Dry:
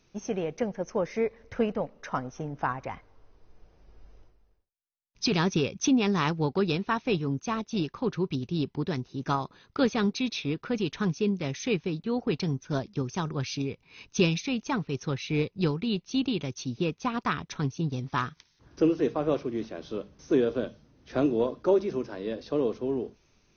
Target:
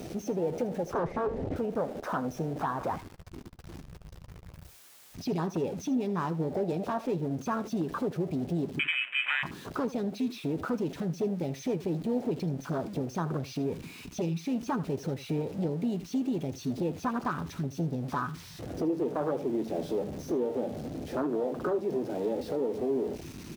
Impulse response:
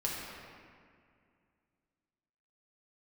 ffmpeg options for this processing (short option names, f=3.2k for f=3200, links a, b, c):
-filter_complex "[0:a]aeval=exprs='val(0)+0.5*0.0335*sgn(val(0))':c=same,asettb=1/sr,asplit=3[a][b][c];[a]atrim=end=6.514[d];[b]atrim=start=6.51:end=7.06,asetpts=PTS-STARTPTS,afade=t=in:d=0.004:c=qsin,afade=t=out:st=0.546:d=0.004:c=qsin,equalizer=f=630:t=o:w=0.39:g=15[e];[c]atrim=start=7.056[f];[d][e]acrossfade=d=0.004:c1=hsin:c2=qsin[g];[g][f]acrossfade=d=0.004:c1=qsin:c2=hsin,acompressor=threshold=-28dB:ratio=3,asettb=1/sr,asplit=3[h][i][j];[h]atrim=end=0.934[k];[i]atrim=start=0.93:end=1.56,asetpts=PTS-STARTPTS,afade=t=in:d=0.004:c=qsin,afade=t=out:st=0.626:d=0.004:c=qsin,aemphasis=mode=reproduction:type=riaa[l];[j]atrim=start=1.556[m];[k][l]acrossfade=d=0.004:c1=hsin:c2=qsin[n];[n][m]acrossfade=d=0.004:c1=qsin:c2=hsin,aeval=exprs='0.0596*(abs(mod(val(0)/0.0596+3,4)-2)-1)':c=same,asettb=1/sr,asplit=3[o][p][q];[o]atrim=end=8.794[r];[p]atrim=start=8.79:end=9.43,asetpts=PTS-STARTPTS,afade=t=in:d=0.004:c=qsin,afade=t=out:st=0.636:d=0.004:c=qsin,lowpass=f=2.3k:t=q:w=0.5098,lowpass=f=2.3k:t=q:w=0.6013,lowpass=f=2.3k:t=q:w=0.9,lowpass=f=2.3k:t=q:w=2.563,afreqshift=-2700[s];[q]atrim=start=9.426[t];[r][s]acrossfade=d=0.004:c1=hsin:c2=qsin[u];[u][t]acrossfade=d=0.004:c1=qsin:c2=hsin,afwtdn=0.0282,highpass=f=210:p=1,aecho=1:1:12|79:0.237|0.15,volume=2.5dB"